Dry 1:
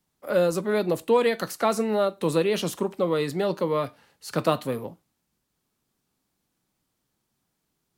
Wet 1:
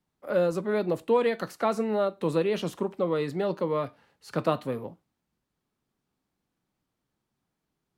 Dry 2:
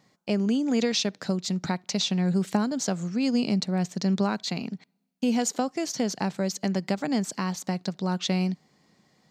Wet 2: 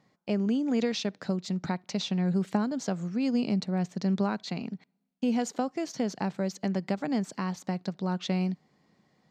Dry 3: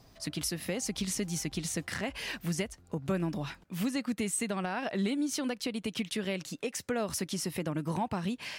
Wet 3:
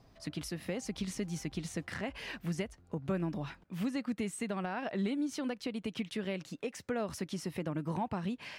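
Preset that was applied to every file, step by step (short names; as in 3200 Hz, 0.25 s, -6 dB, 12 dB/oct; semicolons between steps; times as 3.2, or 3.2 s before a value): high shelf 4400 Hz -11.5 dB; gain -2.5 dB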